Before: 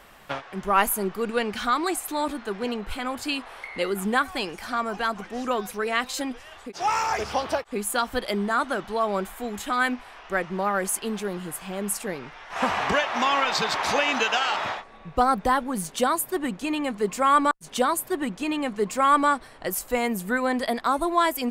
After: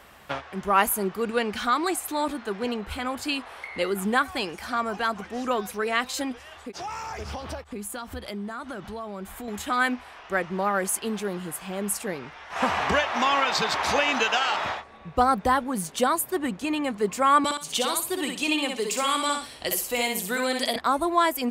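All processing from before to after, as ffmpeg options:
ffmpeg -i in.wav -filter_complex "[0:a]asettb=1/sr,asplit=3[link_01][link_02][link_03];[link_01]atrim=end=6.794[link_04];[link_02]atrim=start=6.79:end=9.48,asetpts=PTS-STARTPTS,afade=type=in:duration=0.004:curve=qsin,afade=type=out:start_time=2.686:duration=0.004:curve=qsin,bass=frequency=250:gain=8,treble=frequency=4000:gain=1,acompressor=threshold=-33dB:ratio=4:attack=3.2:release=140:knee=1:detection=peak[link_05];[link_03]atrim=start=9.476[link_06];[link_04][link_05]acrossfade=duration=0.004:curve1=hsin:curve2=qsin[link_07];[link_07][link_06]acrossfade=duration=0.004:curve1=qsin:curve2=hsin,asettb=1/sr,asplit=3[link_08][link_09][link_10];[link_08]atrim=end=17.444[link_11];[link_09]atrim=start=17.44:end=20.76,asetpts=PTS-STARTPTS,afade=type=in:duration=0.004:curve=qsin,afade=type=out:start_time=3.316:duration=0.004:curve=qsin,highshelf=frequency=2200:width_type=q:width=1.5:gain=8,acrossover=split=280|2300[link_12][link_13][link_14];[link_12]acompressor=threshold=-44dB:ratio=4[link_15];[link_13]acompressor=threshold=-26dB:ratio=4[link_16];[link_14]acompressor=threshold=-27dB:ratio=4[link_17];[link_15][link_16][link_17]amix=inputs=3:normalize=0,aecho=1:1:62|124|186:0.596|0.143|0.0343,atrim=end_sample=146412[link_18];[link_10]atrim=start=20.756[link_19];[link_11][link_18]acrossfade=duration=0.004:curve1=hsin:curve2=qsin[link_20];[link_20][link_19]acrossfade=duration=0.004:curve1=qsin:curve2=hsin,highpass=46,equalizer=frequency=76:width=7:gain=11.5" out.wav

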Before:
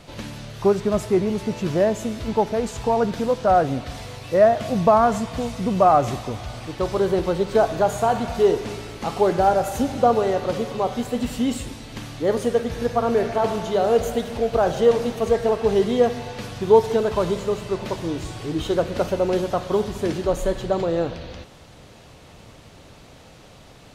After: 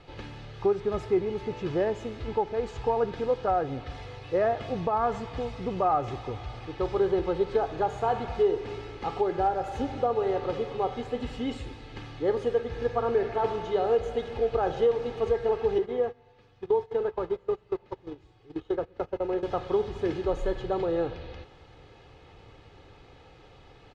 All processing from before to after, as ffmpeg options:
ffmpeg -i in.wav -filter_complex "[0:a]asettb=1/sr,asplit=3[link_01][link_02][link_03];[link_01]atrim=end=15.784[link_04];[link_02]atrim=start=15.78:end=19.43,asetpts=PTS-STARTPTS,afade=type=in:duration=0.004:curve=qsin,afade=type=out:start_time=3.646:duration=0.004:curve=qsin,agate=range=-20dB:threshold=-24dB:ratio=16:release=100:detection=peak,acrossover=split=300|2100[link_05][link_06][link_07];[link_05]acompressor=threshold=-34dB:ratio=4[link_08];[link_06]acompressor=threshold=-20dB:ratio=4[link_09];[link_07]acompressor=threshold=-52dB:ratio=4[link_10];[link_08][link_09][link_10]amix=inputs=3:normalize=0[link_11];[link_03]atrim=start=19.426[link_12];[link_04][link_11]acrossfade=duration=0.004:curve1=hsin:curve2=qsin[link_13];[link_13][link_12]acrossfade=duration=0.004:curve1=qsin:curve2=hsin,lowpass=3400,aecho=1:1:2.4:0.55,alimiter=limit=-9dB:level=0:latency=1:release=306,volume=-6.5dB" out.wav

